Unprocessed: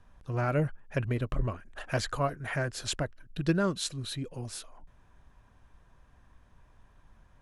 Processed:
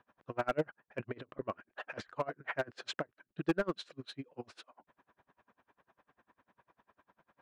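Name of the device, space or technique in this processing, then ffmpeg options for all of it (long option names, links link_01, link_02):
helicopter radio: -af "highpass=300,lowpass=2600,aeval=exprs='val(0)*pow(10,-32*(0.5-0.5*cos(2*PI*10*n/s))/20)':channel_layout=same,asoftclip=type=hard:threshold=-28dB,volume=4.5dB"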